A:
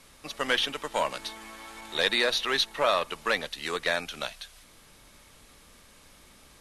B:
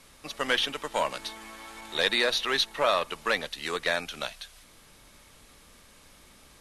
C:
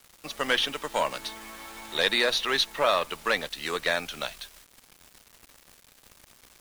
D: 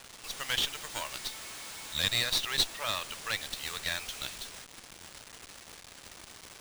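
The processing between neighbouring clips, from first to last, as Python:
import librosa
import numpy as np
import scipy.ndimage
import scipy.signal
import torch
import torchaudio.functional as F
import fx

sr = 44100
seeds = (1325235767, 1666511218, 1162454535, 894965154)

y1 = x
y2 = fx.quant_dither(y1, sr, seeds[0], bits=8, dither='none')
y2 = F.gain(torch.from_numpy(y2), 1.0).numpy()
y3 = np.diff(y2, prepend=0.0)
y3 = fx.running_max(y3, sr, window=3)
y3 = F.gain(torch.from_numpy(y3), 4.0).numpy()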